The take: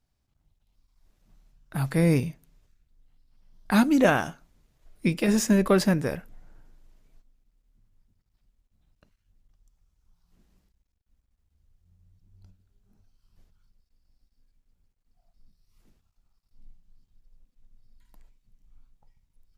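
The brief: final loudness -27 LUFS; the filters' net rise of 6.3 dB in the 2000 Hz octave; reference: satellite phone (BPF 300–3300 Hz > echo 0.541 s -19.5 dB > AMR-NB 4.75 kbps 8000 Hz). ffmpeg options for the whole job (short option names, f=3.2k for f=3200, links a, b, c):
-af "highpass=300,lowpass=3.3k,equalizer=f=2k:t=o:g=9,aecho=1:1:541:0.106,volume=-0.5dB" -ar 8000 -c:a libopencore_amrnb -b:a 4750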